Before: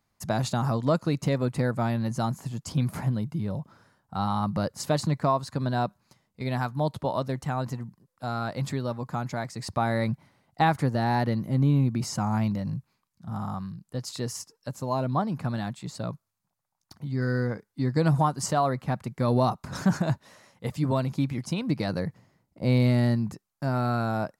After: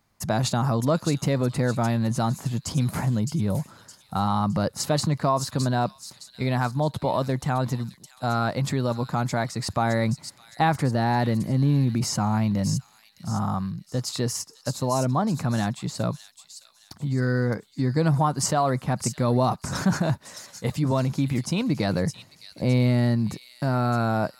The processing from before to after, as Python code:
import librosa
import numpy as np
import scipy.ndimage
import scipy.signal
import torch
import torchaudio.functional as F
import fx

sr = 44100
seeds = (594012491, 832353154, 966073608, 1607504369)

p1 = fx.over_compress(x, sr, threshold_db=-30.0, ratio=-1.0)
p2 = x + F.gain(torch.from_numpy(p1), -3.0).numpy()
y = fx.echo_wet_highpass(p2, sr, ms=614, feedback_pct=39, hz=4500.0, wet_db=-4.0)